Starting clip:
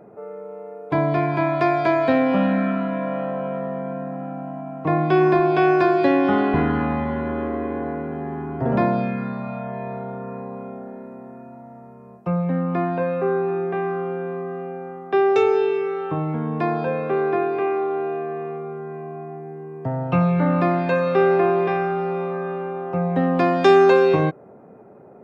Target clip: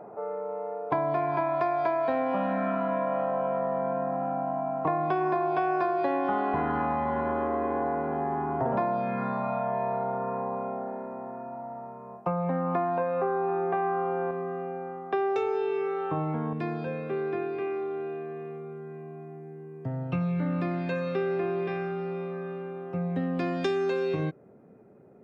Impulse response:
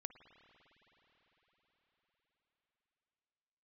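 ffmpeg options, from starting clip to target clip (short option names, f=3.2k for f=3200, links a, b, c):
-af "asetnsamples=n=441:p=0,asendcmd='14.31 equalizer g 4.5;16.53 equalizer g -9',equalizer=f=870:t=o:w=1.6:g=13,acompressor=threshold=-19dB:ratio=6,volume=-5.5dB"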